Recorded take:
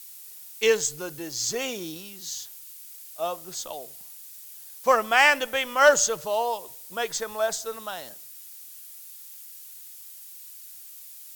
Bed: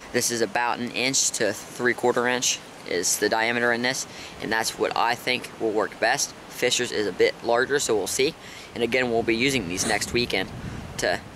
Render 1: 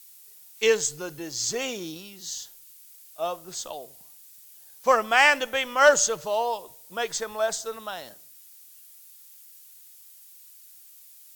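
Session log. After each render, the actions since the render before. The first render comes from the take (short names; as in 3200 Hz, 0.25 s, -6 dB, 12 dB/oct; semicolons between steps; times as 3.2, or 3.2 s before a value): noise print and reduce 6 dB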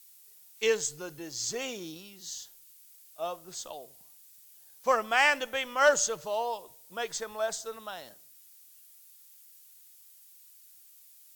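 gain -5.5 dB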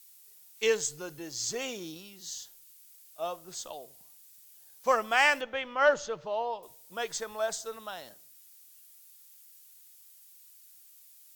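5.41–6.63 air absorption 220 m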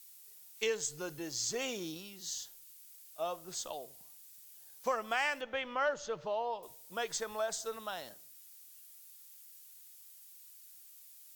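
compressor 2.5:1, threshold -33 dBFS, peak gain reduction 10.5 dB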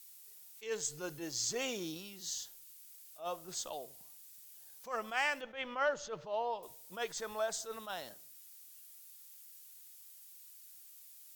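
attack slew limiter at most 180 dB/s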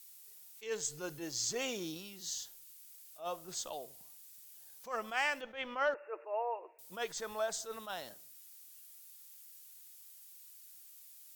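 5.94–6.79 brick-wall FIR band-pass 300–2800 Hz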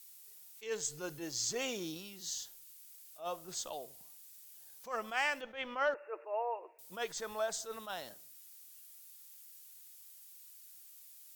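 4.05–4.47 HPF 88 Hz -> 290 Hz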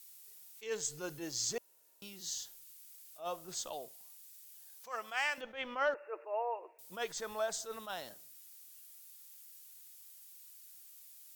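1.58–2.02 room tone; 3.88–5.38 HPF 800 Hz 6 dB/oct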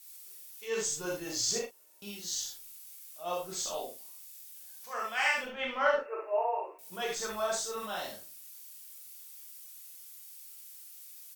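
doubler 39 ms -9 dB; non-linear reverb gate 0.1 s flat, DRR -4 dB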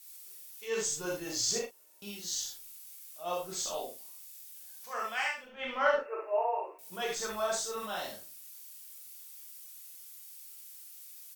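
5.13–5.74 dip -12 dB, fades 0.24 s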